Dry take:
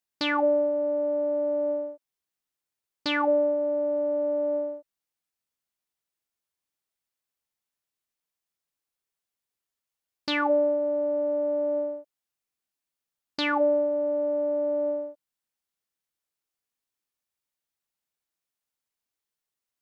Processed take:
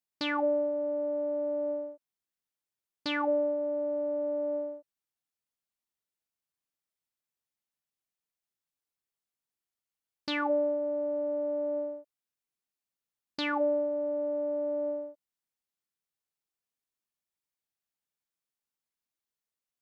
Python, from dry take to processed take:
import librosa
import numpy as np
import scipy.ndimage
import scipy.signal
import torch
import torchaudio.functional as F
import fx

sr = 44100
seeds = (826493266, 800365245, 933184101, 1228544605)

y = fx.peak_eq(x, sr, hz=170.0, db=3.0, octaves=1.5)
y = y * 10.0 ** (-5.5 / 20.0)